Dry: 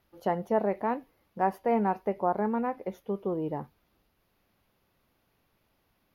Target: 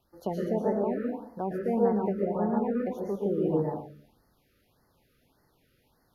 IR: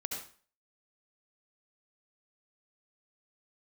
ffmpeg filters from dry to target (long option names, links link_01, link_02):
-filter_complex "[0:a]acrossover=split=470[link_01][link_02];[link_02]acompressor=threshold=-38dB:ratio=5[link_03];[link_01][link_03]amix=inputs=2:normalize=0[link_04];[1:a]atrim=start_sample=2205,afade=type=out:start_time=0.37:duration=0.01,atrim=end_sample=16758,asetrate=26901,aresample=44100[link_05];[link_04][link_05]afir=irnorm=-1:irlink=0,afftfilt=real='re*(1-between(b*sr/1024,830*pow(3000/830,0.5+0.5*sin(2*PI*1.7*pts/sr))/1.41,830*pow(3000/830,0.5+0.5*sin(2*PI*1.7*pts/sr))*1.41))':imag='im*(1-between(b*sr/1024,830*pow(3000/830,0.5+0.5*sin(2*PI*1.7*pts/sr))/1.41,830*pow(3000/830,0.5+0.5*sin(2*PI*1.7*pts/sr))*1.41))':win_size=1024:overlap=0.75"